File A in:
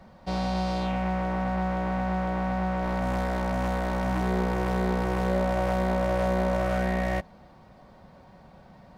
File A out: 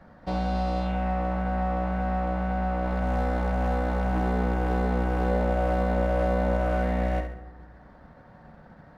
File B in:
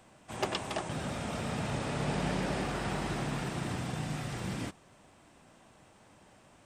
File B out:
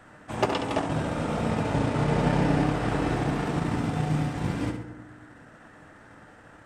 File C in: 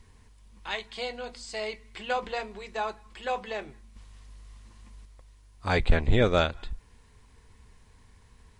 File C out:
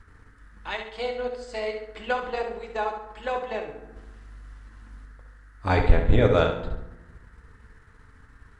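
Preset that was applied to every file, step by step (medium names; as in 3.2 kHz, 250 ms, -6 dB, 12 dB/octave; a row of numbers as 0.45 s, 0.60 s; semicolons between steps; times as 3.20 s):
treble shelf 2.7 kHz -9 dB; FDN reverb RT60 1.1 s, low-frequency decay 1.45×, high-frequency decay 0.35×, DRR 5 dB; transient shaper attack +3 dB, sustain -6 dB; band noise 1.2–1.9 kHz -63 dBFS; on a send: flutter echo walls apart 11.7 m, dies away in 0.5 s; on the sum: normalise loudness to -27 LUFS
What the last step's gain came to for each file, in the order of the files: -1.0 dB, +6.0 dB, +1.5 dB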